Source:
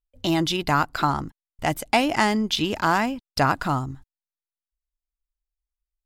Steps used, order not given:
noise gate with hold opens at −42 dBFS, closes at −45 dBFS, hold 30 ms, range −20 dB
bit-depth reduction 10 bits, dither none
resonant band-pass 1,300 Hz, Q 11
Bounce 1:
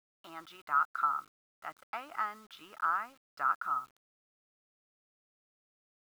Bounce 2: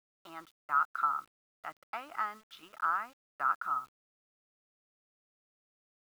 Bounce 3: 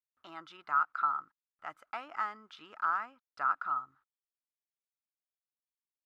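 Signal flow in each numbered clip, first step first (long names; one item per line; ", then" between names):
noise gate with hold, then resonant band-pass, then bit-depth reduction
resonant band-pass, then noise gate with hold, then bit-depth reduction
noise gate with hold, then bit-depth reduction, then resonant band-pass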